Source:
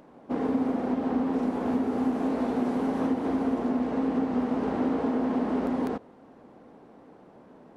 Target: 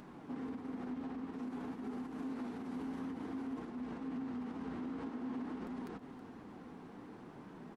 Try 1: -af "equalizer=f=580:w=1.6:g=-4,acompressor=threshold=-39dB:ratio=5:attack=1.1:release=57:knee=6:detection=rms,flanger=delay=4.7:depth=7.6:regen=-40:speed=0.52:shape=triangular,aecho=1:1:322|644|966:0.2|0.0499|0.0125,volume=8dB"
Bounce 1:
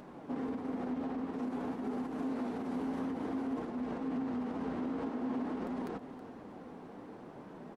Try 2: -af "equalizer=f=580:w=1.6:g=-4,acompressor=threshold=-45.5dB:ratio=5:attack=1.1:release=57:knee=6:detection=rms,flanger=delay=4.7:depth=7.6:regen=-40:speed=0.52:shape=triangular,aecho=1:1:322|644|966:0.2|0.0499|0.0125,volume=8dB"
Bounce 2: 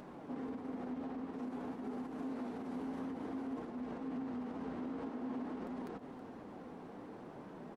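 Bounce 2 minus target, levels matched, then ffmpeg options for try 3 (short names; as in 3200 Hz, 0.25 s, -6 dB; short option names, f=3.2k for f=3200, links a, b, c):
500 Hz band +3.0 dB
-af "equalizer=f=580:w=1.6:g=-12.5,acompressor=threshold=-45.5dB:ratio=5:attack=1.1:release=57:knee=6:detection=rms,flanger=delay=4.7:depth=7.6:regen=-40:speed=0.52:shape=triangular,aecho=1:1:322|644|966:0.2|0.0499|0.0125,volume=8dB"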